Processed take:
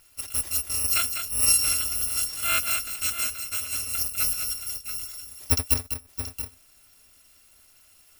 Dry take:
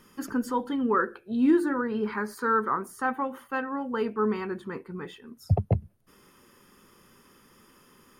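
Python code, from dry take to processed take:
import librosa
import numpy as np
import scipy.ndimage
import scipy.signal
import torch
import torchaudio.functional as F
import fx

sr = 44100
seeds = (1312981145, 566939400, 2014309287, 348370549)

y = fx.bit_reversed(x, sr, seeds[0], block=256)
y = fx.echo_multitap(y, sr, ms=(200, 678, 709), db=(-7.5, -10.5, -18.0))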